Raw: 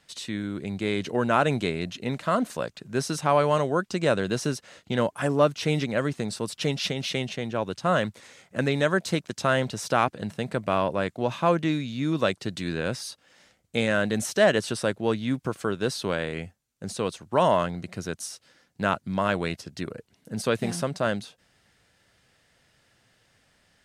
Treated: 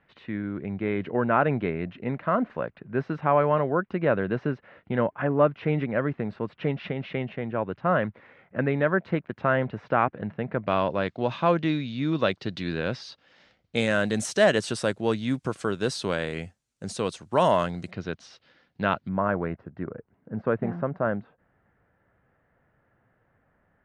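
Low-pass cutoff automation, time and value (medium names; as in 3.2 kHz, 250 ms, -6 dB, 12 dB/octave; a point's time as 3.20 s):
low-pass 24 dB/octave
2.2 kHz
from 10.67 s 4.6 kHz
from 13.76 s 9.7 kHz
from 17.91 s 4 kHz
from 19.09 s 1.6 kHz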